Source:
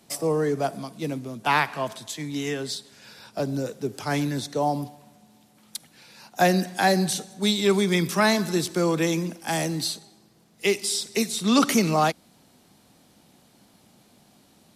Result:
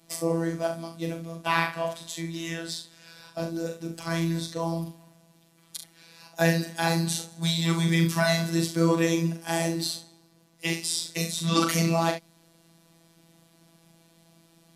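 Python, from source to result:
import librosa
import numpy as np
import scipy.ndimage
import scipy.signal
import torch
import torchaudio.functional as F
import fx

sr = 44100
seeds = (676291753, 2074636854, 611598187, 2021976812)

y = fx.notch_comb(x, sr, f0_hz=430.0)
y = fx.room_early_taps(y, sr, ms=(40, 69), db=(-6.0, -10.5))
y = fx.robotise(y, sr, hz=166.0)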